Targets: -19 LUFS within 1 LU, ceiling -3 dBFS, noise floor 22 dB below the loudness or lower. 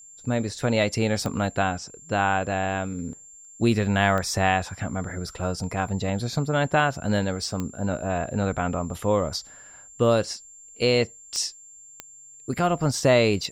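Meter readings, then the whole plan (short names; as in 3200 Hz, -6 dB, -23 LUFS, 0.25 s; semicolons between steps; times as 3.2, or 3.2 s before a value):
clicks 5; steady tone 7300 Hz; tone level -45 dBFS; loudness -25.0 LUFS; peak -7.0 dBFS; loudness target -19.0 LUFS
-> de-click; notch 7300 Hz, Q 30; gain +6 dB; limiter -3 dBFS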